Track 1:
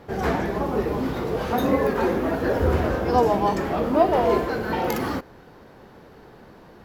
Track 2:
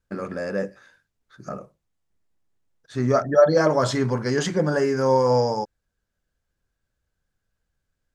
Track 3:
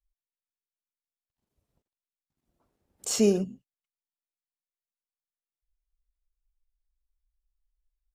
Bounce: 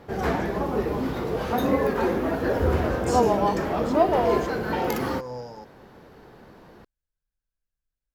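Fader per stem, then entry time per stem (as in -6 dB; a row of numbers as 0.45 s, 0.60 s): -1.5 dB, -16.5 dB, -8.0 dB; 0.00 s, 0.00 s, 0.00 s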